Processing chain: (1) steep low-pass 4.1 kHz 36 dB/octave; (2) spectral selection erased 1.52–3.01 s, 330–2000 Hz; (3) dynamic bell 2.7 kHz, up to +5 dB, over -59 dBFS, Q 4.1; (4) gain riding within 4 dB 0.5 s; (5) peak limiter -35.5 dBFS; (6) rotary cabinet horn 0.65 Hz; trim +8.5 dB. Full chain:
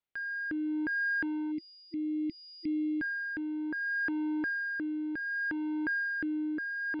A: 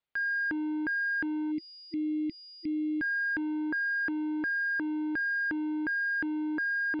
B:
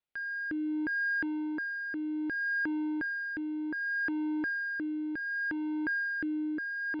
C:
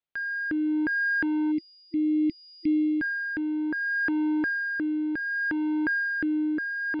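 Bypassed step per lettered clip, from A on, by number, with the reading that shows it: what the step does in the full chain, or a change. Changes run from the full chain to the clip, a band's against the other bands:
6, 1 kHz band +2.5 dB; 2, 4 kHz band -4.0 dB; 5, mean gain reduction 5.5 dB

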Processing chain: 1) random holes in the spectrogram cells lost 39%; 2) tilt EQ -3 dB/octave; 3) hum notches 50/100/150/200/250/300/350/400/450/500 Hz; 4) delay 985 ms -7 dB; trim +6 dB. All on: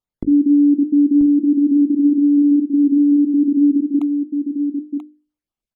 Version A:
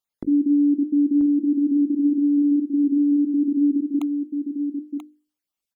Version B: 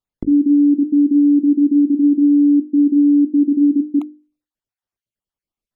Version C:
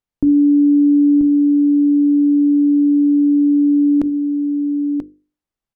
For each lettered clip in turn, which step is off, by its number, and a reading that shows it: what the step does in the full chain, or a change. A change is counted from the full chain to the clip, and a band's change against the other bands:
2, loudness change -5.5 LU; 4, momentary loudness spread change -4 LU; 1, crest factor change -1.5 dB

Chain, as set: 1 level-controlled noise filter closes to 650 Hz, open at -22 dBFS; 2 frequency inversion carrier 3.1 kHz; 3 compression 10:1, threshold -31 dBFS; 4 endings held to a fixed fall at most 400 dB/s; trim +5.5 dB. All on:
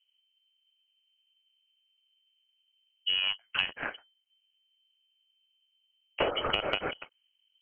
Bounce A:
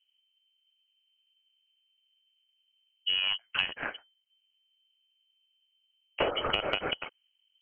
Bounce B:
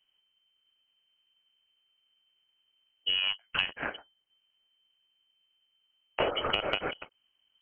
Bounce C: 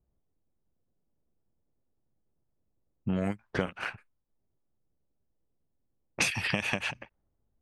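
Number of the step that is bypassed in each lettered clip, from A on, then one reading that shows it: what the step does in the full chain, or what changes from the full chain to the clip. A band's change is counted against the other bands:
4, momentary loudness spread change +3 LU; 1, momentary loudness spread change +4 LU; 2, 125 Hz band +16.0 dB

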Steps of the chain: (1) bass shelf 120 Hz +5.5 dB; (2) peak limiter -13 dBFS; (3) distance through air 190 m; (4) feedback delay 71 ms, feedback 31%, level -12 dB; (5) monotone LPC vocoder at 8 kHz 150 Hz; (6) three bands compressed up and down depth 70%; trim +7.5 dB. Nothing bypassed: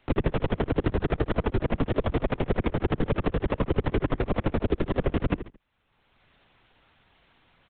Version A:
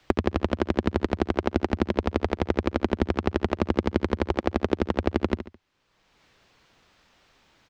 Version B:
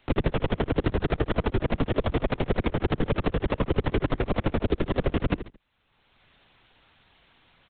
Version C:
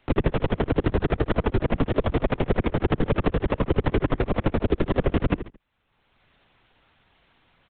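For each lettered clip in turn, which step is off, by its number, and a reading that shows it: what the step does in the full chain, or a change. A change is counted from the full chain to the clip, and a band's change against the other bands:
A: 5, 125 Hz band -5.5 dB; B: 3, 4 kHz band +3.5 dB; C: 2, mean gain reduction 2.0 dB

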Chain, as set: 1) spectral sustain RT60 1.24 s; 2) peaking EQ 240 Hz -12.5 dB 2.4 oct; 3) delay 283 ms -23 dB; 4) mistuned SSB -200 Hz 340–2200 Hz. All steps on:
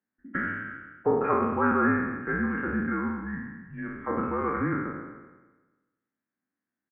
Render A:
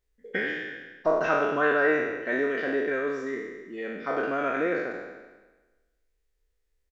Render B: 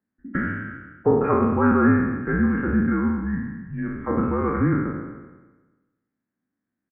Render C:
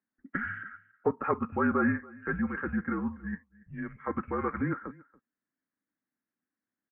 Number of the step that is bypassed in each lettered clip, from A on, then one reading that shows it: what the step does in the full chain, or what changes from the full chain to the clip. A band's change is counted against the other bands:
4, 125 Hz band -11.5 dB; 2, 125 Hz band +7.0 dB; 1, 125 Hz band +2.0 dB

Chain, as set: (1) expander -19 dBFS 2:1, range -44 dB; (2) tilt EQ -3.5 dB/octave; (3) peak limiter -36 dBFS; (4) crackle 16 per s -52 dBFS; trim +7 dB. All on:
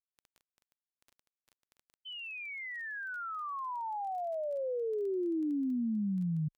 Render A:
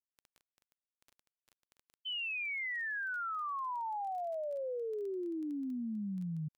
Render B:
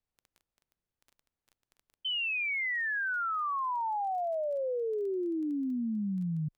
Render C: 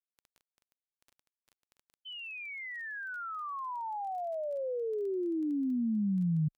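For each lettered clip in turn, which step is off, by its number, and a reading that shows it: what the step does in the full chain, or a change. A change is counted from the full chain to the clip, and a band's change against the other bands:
2, 2 kHz band +7.0 dB; 1, momentary loudness spread change -3 LU; 3, momentary loudness spread change +2 LU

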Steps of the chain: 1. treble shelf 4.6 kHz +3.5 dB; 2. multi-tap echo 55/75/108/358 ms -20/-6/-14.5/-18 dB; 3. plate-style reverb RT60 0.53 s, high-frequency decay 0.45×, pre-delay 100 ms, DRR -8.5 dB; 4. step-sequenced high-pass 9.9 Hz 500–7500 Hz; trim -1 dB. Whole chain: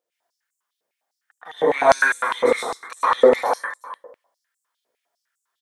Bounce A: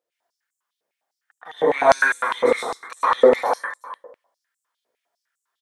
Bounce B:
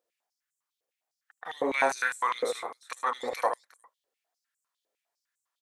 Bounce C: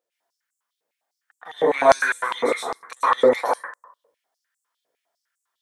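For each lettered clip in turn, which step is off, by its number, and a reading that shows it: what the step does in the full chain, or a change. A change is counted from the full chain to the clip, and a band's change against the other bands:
1, 8 kHz band -2.0 dB; 3, momentary loudness spread change -2 LU; 2, momentary loudness spread change -4 LU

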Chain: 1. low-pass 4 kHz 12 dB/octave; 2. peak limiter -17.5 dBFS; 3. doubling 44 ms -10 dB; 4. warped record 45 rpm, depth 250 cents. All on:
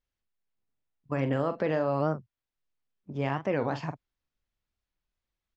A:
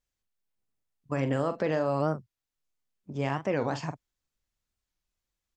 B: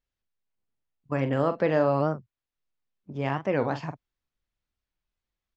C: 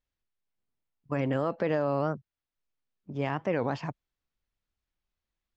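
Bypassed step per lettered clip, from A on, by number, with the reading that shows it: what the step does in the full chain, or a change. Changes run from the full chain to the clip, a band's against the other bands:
1, 4 kHz band +2.0 dB; 2, mean gain reduction 2.0 dB; 3, crest factor change -1.5 dB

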